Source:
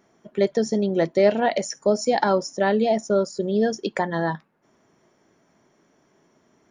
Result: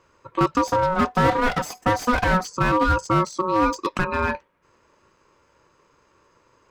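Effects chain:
0:00.67–0:02.45: lower of the sound and its delayed copy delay 3.9 ms
ring modulation 740 Hz
slew-rate limiting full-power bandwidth 100 Hz
level +4.5 dB

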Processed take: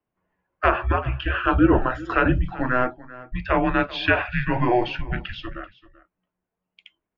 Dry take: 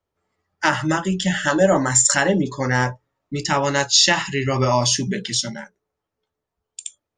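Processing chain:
single-tap delay 387 ms −19 dB
single-sideband voice off tune −250 Hz 210–3,000 Hz

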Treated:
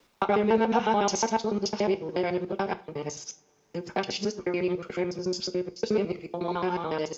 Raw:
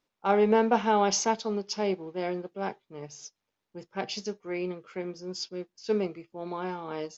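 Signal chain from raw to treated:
reversed piece by piece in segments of 72 ms
in parallel at +2 dB: downward compressor, threshold −32 dBFS, peak gain reduction 14 dB
on the sum: coupled-rooms reverb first 0.29 s, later 2 s, from −28 dB, DRR 9 dB
multiband upward and downward compressor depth 40%
level −2 dB

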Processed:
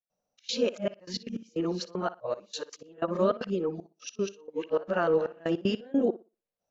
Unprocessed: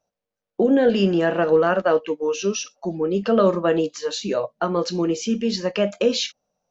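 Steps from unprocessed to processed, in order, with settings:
played backwards from end to start
gate pattern ".xxx.xxxx..x.x." 154 BPM −24 dB
tape delay 60 ms, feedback 24%, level −15.5 dB, low-pass 4,700 Hz
level −7.5 dB

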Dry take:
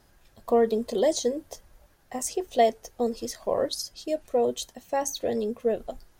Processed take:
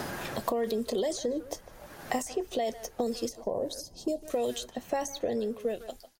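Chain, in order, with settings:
fade-out on the ending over 1.12 s
brickwall limiter −22 dBFS, peak gain reduction 11.5 dB
0:03.29–0:04.30: drawn EQ curve 190 Hz 0 dB, 950 Hz −5 dB, 1,400 Hz −25 dB, 6,300 Hz −6 dB
far-end echo of a speakerphone 150 ms, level −17 dB
multiband upward and downward compressor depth 100%

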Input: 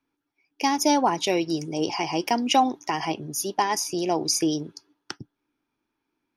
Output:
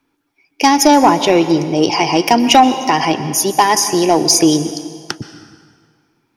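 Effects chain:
0:00.87–0:01.78: high-shelf EQ 4,300 Hz −10.5 dB
dense smooth reverb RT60 1.9 s, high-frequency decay 0.8×, pre-delay 110 ms, DRR 12 dB
in parallel at −5.5 dB: sine wavefolder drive 5 dB, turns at −8 dBFS
on the sum: level +5 dB

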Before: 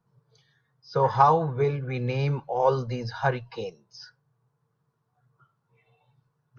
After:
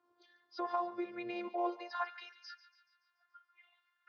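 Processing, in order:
phases set to zero 351 Hz
three-way crossover with the lows and the highs turned down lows −20 dB, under 300 Hz, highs −21 dB, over 5,400 Hz
downward compressor 2 to 1, threshold −51 dBFS, peak gain reduction 18 dB
high-frequency loss of the air 92 metres
echo with a time of its own for lows and highs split 980 Hz, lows 81 ms, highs 230 ms, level −15.5 dB
high-pass filter sweep 120 Hz → 1,700 Hz, 0:02.02–0:03.53
phase-vocoder stretch with locked phases 0.62×
level +5 dB

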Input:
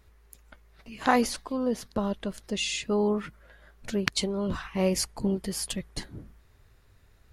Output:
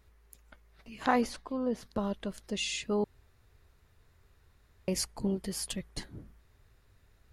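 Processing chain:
0:01.06–0:01.83: high-shelf EQ 3,900 Hz −8.5 dB
0:03.04–0:04.88: fill with room tone
level −4 dB

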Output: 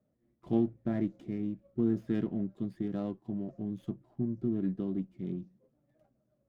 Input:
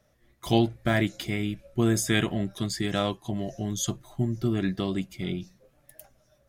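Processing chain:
resonant band-pass 240 Hz, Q 1.4
windowed peak hold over 5 samples
level −2.5 dB

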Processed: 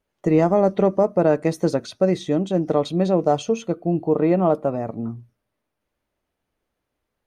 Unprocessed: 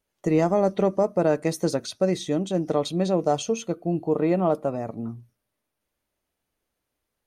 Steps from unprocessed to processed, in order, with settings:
high-shelf EQ 4,200 Hz −11.5 dB
level +4 dB

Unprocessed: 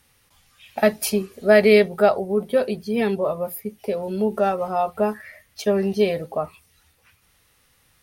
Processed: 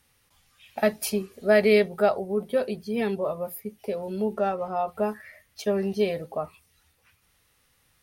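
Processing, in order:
0:04.33–0:04.87: high-shelf EQ 7,700 Hz → 4,500 Hz −9.5 dB
level −5 dB

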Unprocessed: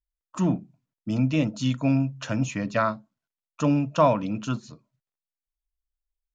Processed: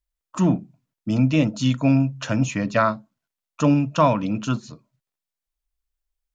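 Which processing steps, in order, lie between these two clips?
0:03.74–0:04.23: parametric band 590 Hz −4.5 dB 1.2 octaves
level +4.5 dB

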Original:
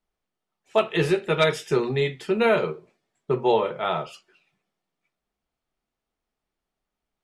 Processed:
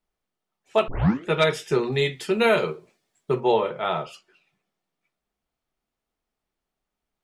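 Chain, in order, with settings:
0:00.88: tape start 0.41 s
0:01.92–0:03.40: high-shelf EQ 3,600 Hz +10 dB

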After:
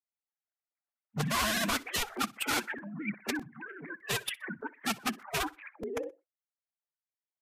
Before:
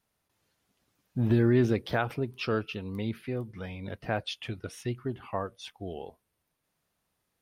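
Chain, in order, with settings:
three sine waves on the formant tracks
noise gate with hold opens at −53 dBFS
high-pass filter 220 Hz 24 dB per octave
high-shelf EQ 2,100 Hz +7 dB
in parallel at +1 dB: brickwall limiter −23.5 dBFS, peak gain reduction 9 dB
on the sum: wrap-around overflow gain 18.5 dB
phase-vocoder pitch shift with formants kept −7.5 semitones
pitch vibrato 15 Hz 96 cents
repeating echo 62 ms, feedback 29%, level −22 dB
regular buffer underruns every 0.61 s, samples 128, repeat, from 0:00.95
level −5.5 dB

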